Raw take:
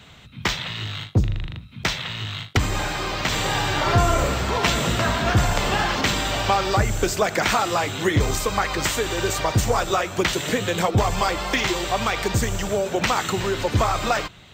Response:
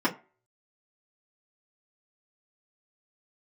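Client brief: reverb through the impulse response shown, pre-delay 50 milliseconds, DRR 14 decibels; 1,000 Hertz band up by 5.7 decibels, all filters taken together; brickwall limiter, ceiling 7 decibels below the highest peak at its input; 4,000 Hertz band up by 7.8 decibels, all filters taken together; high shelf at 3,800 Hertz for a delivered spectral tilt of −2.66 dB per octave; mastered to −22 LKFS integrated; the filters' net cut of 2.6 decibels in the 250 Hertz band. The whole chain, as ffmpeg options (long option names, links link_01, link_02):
-filter_complex "[0:a]equalizer=frequency=250:width_type=o:gain=-4.5,equalizer=frequency=1000:width_type=o:gain=7,highshelf=frequency=3800:gain=4,equalizer=frequency=4000:width_type=o:gain=7,alimiter=limit=-7.5dB:level=0:latency=1,asplit=2[link_01][link_02];[1:a]atrim=start_sample=2205,adelay=50[link_03];[link_02][link_03]afir=irnorm=-1:irlink=0,volume=-26dB[link_04];[link_01][link_04]amix=inputs=2:normalize=0,volume=-3dB"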